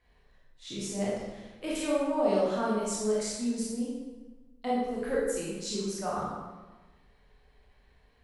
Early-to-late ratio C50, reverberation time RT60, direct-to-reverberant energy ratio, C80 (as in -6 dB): -1.5 dB, 1.3 s, -6.5 dB, 2.0 dB